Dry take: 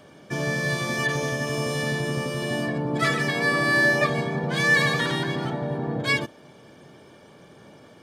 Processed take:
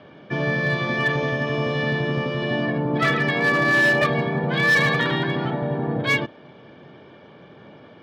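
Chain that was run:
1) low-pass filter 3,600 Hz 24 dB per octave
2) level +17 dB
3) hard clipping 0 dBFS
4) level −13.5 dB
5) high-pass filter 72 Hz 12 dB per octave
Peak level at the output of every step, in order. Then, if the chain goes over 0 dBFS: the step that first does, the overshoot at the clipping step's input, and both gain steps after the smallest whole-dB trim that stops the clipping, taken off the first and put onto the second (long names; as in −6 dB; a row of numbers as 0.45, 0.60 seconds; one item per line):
−9.0, +8.0, 0.0, −13.5, −10.0 dBFS
step 2, 8.0 dB
step 2 +9 dB, step 4 −5.5 dB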